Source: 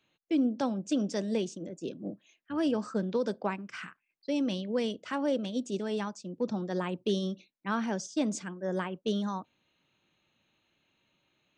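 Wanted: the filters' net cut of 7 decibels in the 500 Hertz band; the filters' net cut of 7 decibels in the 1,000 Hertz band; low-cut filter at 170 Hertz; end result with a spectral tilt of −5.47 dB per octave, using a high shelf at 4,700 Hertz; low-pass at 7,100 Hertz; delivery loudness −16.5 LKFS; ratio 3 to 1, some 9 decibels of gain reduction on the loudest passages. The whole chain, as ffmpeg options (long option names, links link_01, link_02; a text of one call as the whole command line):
ffmpeg -i in.wav -af "highpass=170,lowpass=7100,equalizer=frequency=500:width_type=o:gain=-7,equalizer=frequency=1000:width_type=o:gain=-6.5,highshelf=frequency=4700:gain=-6,acompressor=threshold=-39dB:ratio=3,volume=26dB" out.wav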